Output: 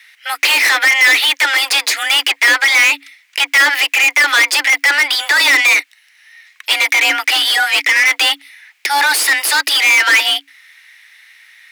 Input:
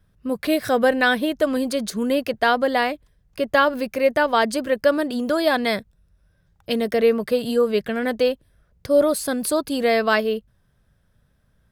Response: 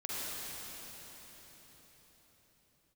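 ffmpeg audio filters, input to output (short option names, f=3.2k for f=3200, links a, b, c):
-filter_complex "[0:a]highpass=f=1.9k:t=q:w=2.8,asplit=2[a][b];[b]highpass=f=720:p=1,volume=35dB,asoftclip=type=tanh:threshold=-3.5dB[c];[a][c]amix=inputs=2:normalize=0,lowpass=f=5.1k:p=1,volume=-6dB,afreqshift=280"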